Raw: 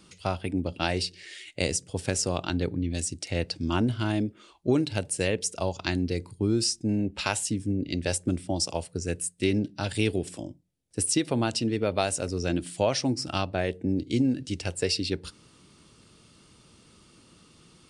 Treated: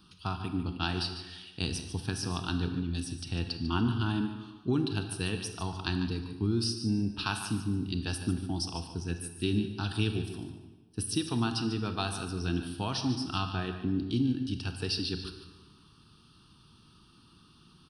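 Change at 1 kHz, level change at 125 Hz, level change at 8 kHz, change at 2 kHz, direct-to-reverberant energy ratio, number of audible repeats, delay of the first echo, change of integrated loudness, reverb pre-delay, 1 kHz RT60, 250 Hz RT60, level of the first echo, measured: −3.5 dB, −1.5 dB, −10.5 dB, −4.5 dB, 6.0 dB, 2, 147 ms, −4.5 dB, 27 ms, 1.3 s, 1.3 s, −11.5 dB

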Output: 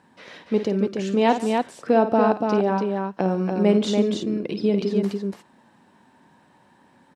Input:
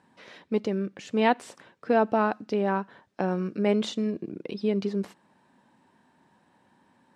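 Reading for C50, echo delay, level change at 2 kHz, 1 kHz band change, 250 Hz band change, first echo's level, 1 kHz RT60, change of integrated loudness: no reverb audible, 53 ms, +1.0 dB, +4.5 dB, +6.5 dB, −10.0 dB, no reverb audible, +5.5 dB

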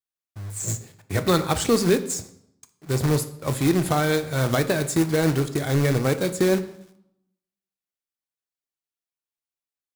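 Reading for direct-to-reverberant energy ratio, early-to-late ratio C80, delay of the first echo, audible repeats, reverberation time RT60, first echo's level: 8.5 dB, 17.0 dB, no echo audible, no echo audible, 0.75 s, no echo audible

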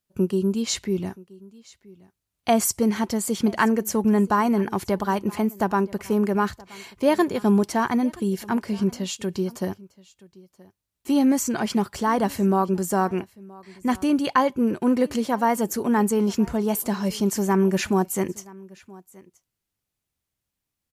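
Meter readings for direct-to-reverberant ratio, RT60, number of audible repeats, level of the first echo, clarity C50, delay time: no reverb audible, no reverb audible, 1, −23.0 dB, no reverb audible, 975 ms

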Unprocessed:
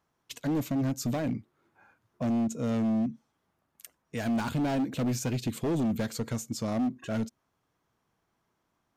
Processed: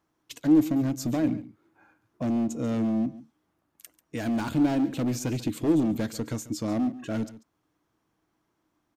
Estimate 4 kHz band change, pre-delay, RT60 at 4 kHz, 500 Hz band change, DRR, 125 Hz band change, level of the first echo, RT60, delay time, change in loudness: 0.0 dB, no reverb audible, no reverb audible, +2.0 dB, no reverb audible, +0.5 dB, −17.0 dB, no reverb audible, 141 ms, +3.5 dB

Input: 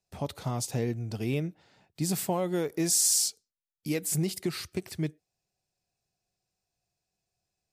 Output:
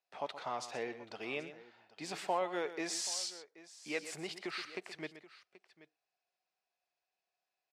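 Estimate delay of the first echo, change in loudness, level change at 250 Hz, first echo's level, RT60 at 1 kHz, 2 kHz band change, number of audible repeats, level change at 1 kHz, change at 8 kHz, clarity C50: 124 ms, −10.5 dB, −14.0 dB, −12.5 dB, no reverb audible, +0.5 dB, 2, 0.0 dB, −15.0 dB, no reverb audible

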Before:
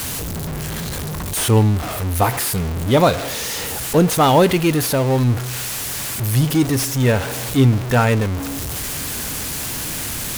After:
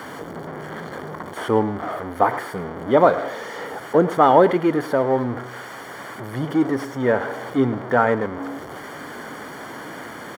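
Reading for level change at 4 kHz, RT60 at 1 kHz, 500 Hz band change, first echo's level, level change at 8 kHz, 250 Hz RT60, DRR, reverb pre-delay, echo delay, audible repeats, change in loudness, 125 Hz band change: −14.5 dB, no reverb audible, +0.5 dB, −16.5 dB, below −20 dB, no reverb audible, no reverb audible, no reverb audible, 106 ms, 1, −2.0 dB, −13.5 dB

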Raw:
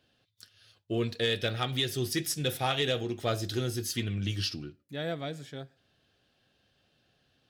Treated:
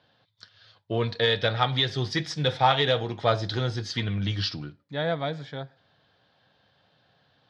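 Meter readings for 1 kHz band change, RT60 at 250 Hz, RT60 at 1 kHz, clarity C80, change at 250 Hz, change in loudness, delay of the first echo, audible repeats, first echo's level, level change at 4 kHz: +10.5 dB, no reverb audible, no reverb audible, no reverb audible, +2.0 dB, +5.5 dB, no echo audible, no echo audible, no echo audible, +5.0 dB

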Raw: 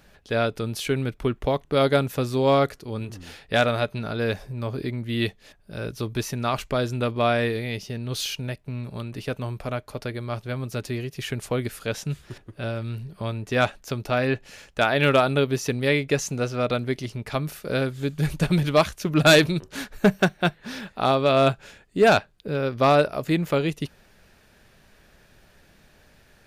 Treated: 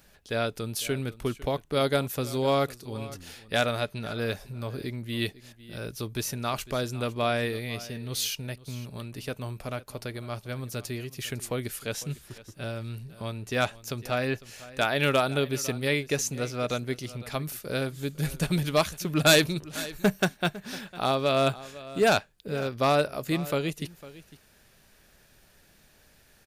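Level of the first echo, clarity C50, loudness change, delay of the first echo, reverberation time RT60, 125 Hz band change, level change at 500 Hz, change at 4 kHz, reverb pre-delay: −18.0 dB, no reverb audible, −4.5 dB, 503 ms, no reverb audible, −5.5 dB, −5.5 dB, −2.0 dB, no reverb audible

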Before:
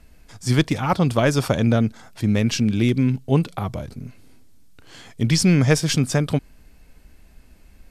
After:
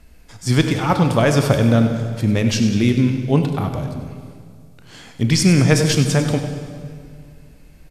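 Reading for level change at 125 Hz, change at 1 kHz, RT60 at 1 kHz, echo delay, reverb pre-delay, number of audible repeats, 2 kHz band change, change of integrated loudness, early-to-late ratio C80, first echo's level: +3.5 dB, +3.5 dB, 2.0 s, 98 ms, 16 ms, 2, +3.0 dB, +3.0 dB, 6.5 dB, −11.5 dB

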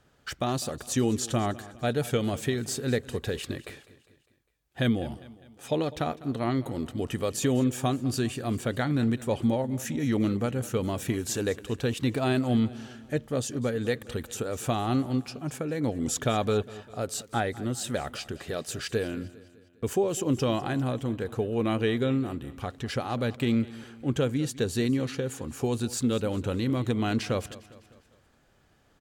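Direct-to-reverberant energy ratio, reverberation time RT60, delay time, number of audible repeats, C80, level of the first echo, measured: no reverb audible, no reverb audible, 202 ms, 3, no reverb audible, −18.5 dB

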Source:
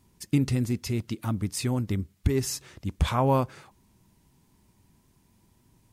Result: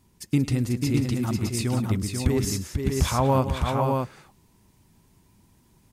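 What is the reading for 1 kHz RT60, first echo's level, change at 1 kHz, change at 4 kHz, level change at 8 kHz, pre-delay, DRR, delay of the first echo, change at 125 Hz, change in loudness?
no reverb audible, −18.5 dB, +3.5 dB, +3.5 dB, +3.5 dB, no reverb audible, no reverb audible, 105 ms, +3.5 dB, +3.0 dB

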